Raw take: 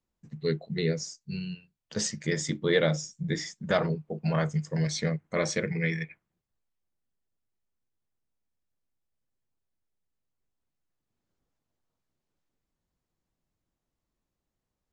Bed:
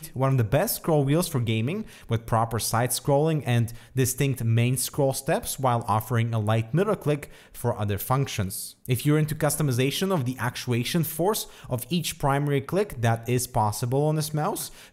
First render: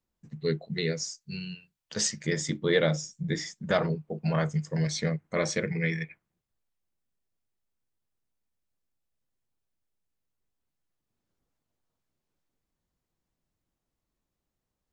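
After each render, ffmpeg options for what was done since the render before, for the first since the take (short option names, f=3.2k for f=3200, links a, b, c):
-filter_complex "[0:a]asettb=1/sr,asplit=3[a][b][c];[a]atrim=end=0.744[d];[b]atrim=start=0.74:end=2.21,asetpts=PTS-STARTPTS,afade=t=in:d=0.004:c=qsin,afade=t=out:st=1.466:d=0.004:c=qsin,tiltshelf=f=770:g=-3.5[e];[c]atrim=start=2.206[f];[d][e]acrossfade=d=0.004:c1=hsin:c2=qsin[g];[g][f]acrossfade=d=0.004:c1=qsin:c2=hsin"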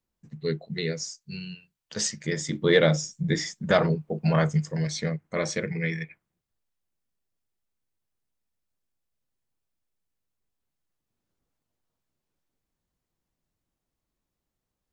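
-filter_complex "[0:a]asettb=1/sr,asplit=3[a][b][c];[a]atrim=end=2.534[d];[b]atrim=start=2.53:end=4.72,asetpts=PTS-STARTPTS,afade=t=in:d=0.004:c=qsin,afade=t=out:st=2.186:d=0.004:c=qsin,acontrast=20[e];[c]atrim=start=4.716[f];[d][e]acrossfade=d=0.004:c1=hsin:c2=qsin[g];[g][f]acrossfade=d=0.004:c1=qsin:c2=hsin"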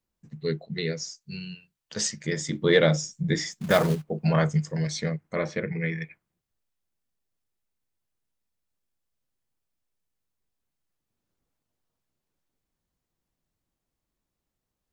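-filter_complex "[0:a]asettb=1/sr,asplit=3[a][b][c];[a]atrim=end=0.664[d];[b]atrim=start=0.66:end=1.16,asetpts=PTS-STARTPTS,afade=t=in:d=0.004:c=qsin,afade=t=out:st=0.496:d=0.004:c=qsin,lowpass=f=6.9k:w=0.5412,lowpass=f=6.9k:w=1.3066[e];[c]atrim=start=1.156[f];[d][e]acrossfade=d=0.004:c1=hsin:c2=qsin[g];[g][f]acrossfade=d=0.004:c1=qsin:c2=hsin,asplit=3[h][i][j];[h]afade=t=out:st=3.51:d=0.02[k];[i]acrusher=bits=4:mode=log:mix=0:aa=0.000001,afade=t=in:st=3.51:d=0.02,afade=t=out:st=4.03:d=0.02[l];[j]afade=t=in:st=4.03:d=0.02[m];[k][l][m]amix=inputs=3:normalize=0,asettb=1/sr,asplit=3[n][o][p];[n]atrim=end=5.364[q];[o]atrim=start=5.36:end=6.02,asetpts=PTS-STARTPTS,afade=t=in:d=0.004:c=qsin,afade=t=out:st=0.656:d=0.004:c=qsin,lowpass=2.7k[r];[p]atrim=start=6.016[s];[q][r]acrossfade=d=0.004:c1=hsin:c2=qsin[t];[t][s]acrossfade=d=0.004:c1=qsin:c2=hsin"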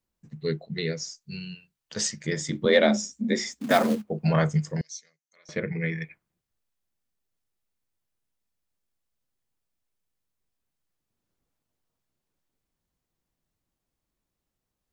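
-filter_complex "[0:a]asettb=1/sr,asplit=3[a][b][c];[a]atrim=end=2.654[d];[b]atrim=start=2.65:end=4.1,asetpts=PTS-STARTPTS,afade=t=in:d=0.004:c=qsin,afade=t=out:st=1.446:d=0.004:c=qsin,afreqshift=58[e];[c]atrim=start=4.096[f];[d][e]acrossfade=d=0.004:c1=hsin:c2=qsin[g];[g][f]acrossfade=d=0.004:c1=qsin:c2=hsin,asettb=1/sr,asplit=3[h][i][j];[h]atrim=end=4.814[k];[i]atrim=start=4.81:end=5.49,asetpts=PTS-STARTPTS,afade=t=in:d=0.004:c=qsin,afade=t=out:st=0.676:d=0.004:c=qsin,bandpass=f=6.2k:t=q:w=6.5[l];[j]atrim=start=5.486[m];[k][l]acrossfade=d=0.004:c1=hsin:c2=qsin[n];[n][m]acrossfade=d=0.004:c1=qsin:c2=hsin"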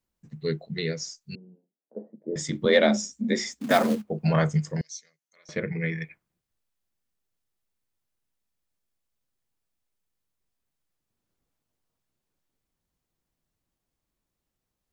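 -filter_complex "[0:a]asettb=1/sr,asplit=3[a][b][c];[a]atrim=end=1.354[d];[b]atrim=start=1.35:end=2.36,asetpts=PTS-STARTPTS,afade=t=in:d=0.004:c=qsin,afade=t=out:st=1.006:d=0.004:c=qsin,asuperpass=centerf=400:order=8:qfactor=0.81[e];[c]atrim=start=2.356[f];[d][e]acrossfade=d=0.004:c1=hsin:c2=qsin[g];[g][f]acrossfade=d=0.004:c1=qsin:c2=hsin"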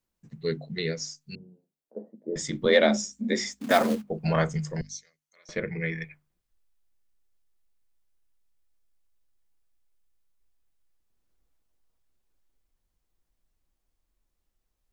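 -af "bandreject=f=50:t=h:w=6,bandreject=f=100:t=h:w=6,bandreject=f=150:t=h:w=6,bandreject=f=200:t=h:w=6,bandreject=f=250:t=h:w=6,asubboost=boost=5:cutoff=54"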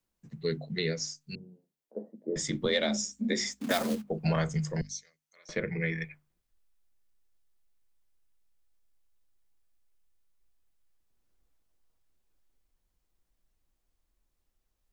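-filter_complex "[0:a]acrossover=split=150|3000[a][b][c];[b]acompressor=threshold=-27dB:ratio=6[d];[a][d][c]amix=inputs=3:normalize=0"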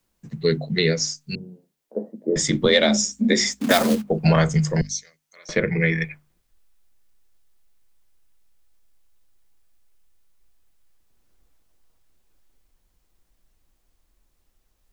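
-af "volume=11dB"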